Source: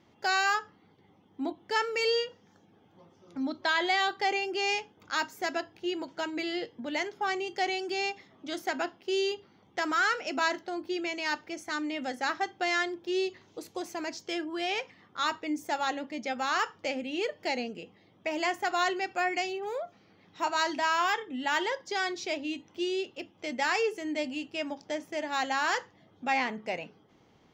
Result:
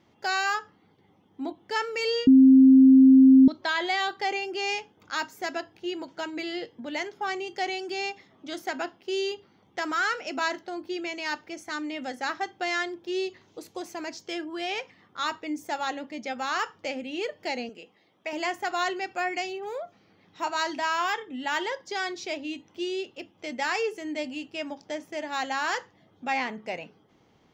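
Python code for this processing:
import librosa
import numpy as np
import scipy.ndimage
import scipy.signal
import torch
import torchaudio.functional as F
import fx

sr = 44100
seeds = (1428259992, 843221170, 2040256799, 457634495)

y = fx.highpass(x, sr, hz=490.0, slope=6, at=(17.69, 18.33))
y = fx.edit(y, sr, fx.bleep(start_s=2.27, length_s=1.21, hz=264.0, db=-10.5), tone=tone)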